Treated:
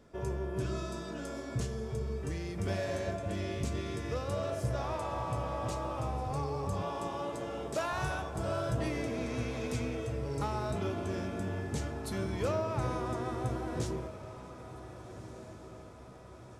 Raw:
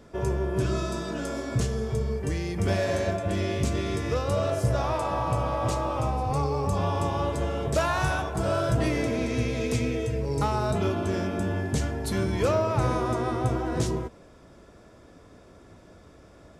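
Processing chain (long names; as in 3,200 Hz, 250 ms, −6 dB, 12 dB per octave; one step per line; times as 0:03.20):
0:06.82–0:07.93: high-pass filter 180 Hz 24 dB per octave
on a send: feedback delay with all-pass diffusion 1,552 ms, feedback 56%, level −13.5 dB
on the sum: level −8.5 dB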